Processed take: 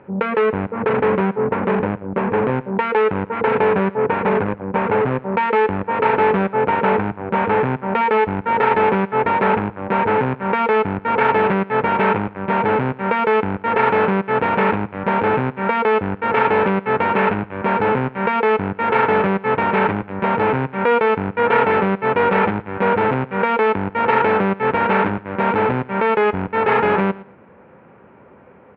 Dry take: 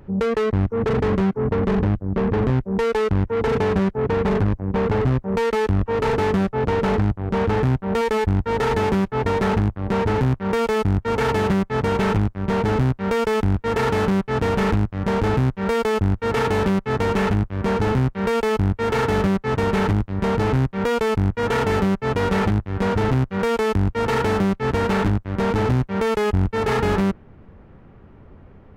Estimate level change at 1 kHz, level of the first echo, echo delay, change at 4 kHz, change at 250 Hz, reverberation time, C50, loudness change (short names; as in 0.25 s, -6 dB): +8.0 dB, -19.0 dB, 0.113 s, -2.0 dB, -0.5 dB, none, none, +3.0 dB